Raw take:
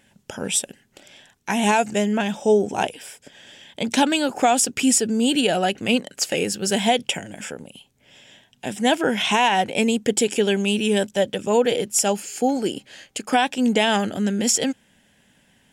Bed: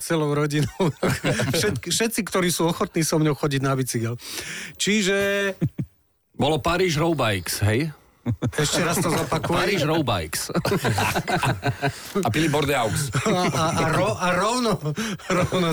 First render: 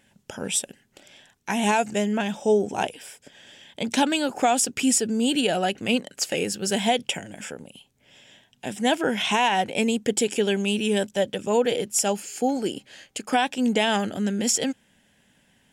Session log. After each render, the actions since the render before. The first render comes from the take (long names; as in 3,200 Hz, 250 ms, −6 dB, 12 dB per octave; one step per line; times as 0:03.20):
level −3 dB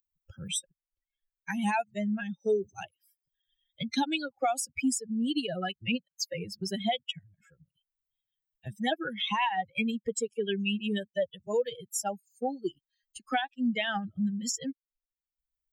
spectral dynamics exaggerated over time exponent 3
multiband upward and downward compressor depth 70%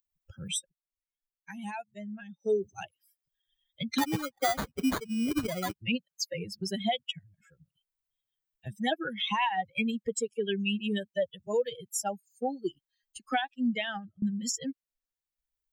0:00.55–0:02.53: duck −10 dB, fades 0.17 s
0:03.98–0:05.74: sample-rate reduction 2,700 Hz
0:13.69–0:14.22: fade out linear, to −23 dB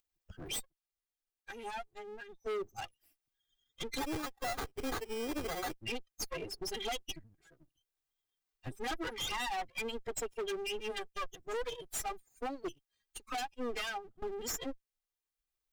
lower of the sound and its delayed copy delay 2.5 ms
hard clipping −34 dBFS, distortion −6 dB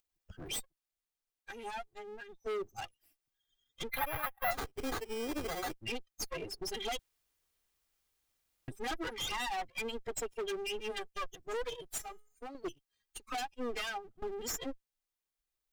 0:03.89–0:04.51: drawn EQ curve 180 Hz 0 dB, 360 Hz −20 dB, 580 Hz +4 dB, 1,900 Hz +7 dB, 3,000 Hz +1 dB, 7,600 Hz −23 dB, 11,000 Hz +11 dB
0:06.99–0:08.68: fill with room tone
0:11.98–0:12.55: tuned comb filter 420 Hz, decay 0.46 s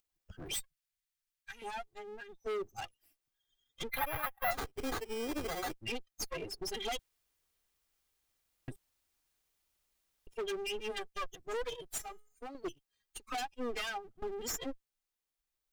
0:00.54–0:01.62: drawn EQ curve 140 Hz 0 dB, 340 Hz −22 dB, 1,700 Hz +1 dB
0:08.76–0:10.27: fill with room tone